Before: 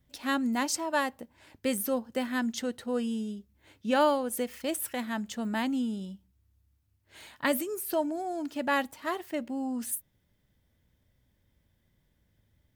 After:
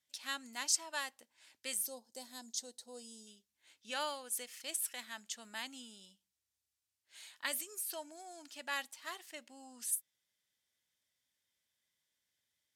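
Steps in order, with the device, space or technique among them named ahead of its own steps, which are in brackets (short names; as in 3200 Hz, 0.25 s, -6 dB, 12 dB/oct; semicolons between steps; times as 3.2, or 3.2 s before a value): piezo pickup straight into a mixer (LPF 7700 Hz 12 dB/oct; differentiator); 1.86–3.27 band shelf 1900 Hz -15 dB; gain +3.5 dB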